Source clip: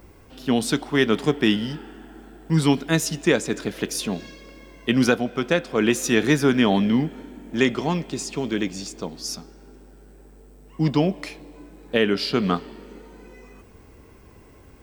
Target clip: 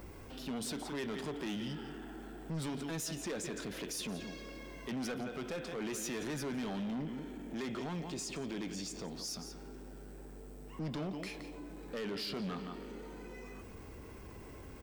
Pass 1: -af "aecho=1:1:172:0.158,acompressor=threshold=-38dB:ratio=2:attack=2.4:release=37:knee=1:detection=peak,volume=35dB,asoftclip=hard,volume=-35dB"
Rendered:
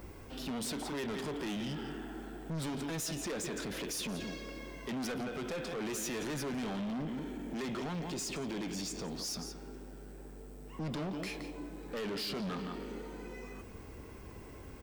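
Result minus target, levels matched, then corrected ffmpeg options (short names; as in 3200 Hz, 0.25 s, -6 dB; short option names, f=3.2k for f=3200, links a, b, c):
compressor: peak gain reduction -4 dB
-af "aecho=1:1:172:0.158,acompressor=threshold=-46.5dB:ratio=2:attack=2.4:release=37:knee=1:detection=peak,volume=35dB,asoftclip=hard,volume=-35dB"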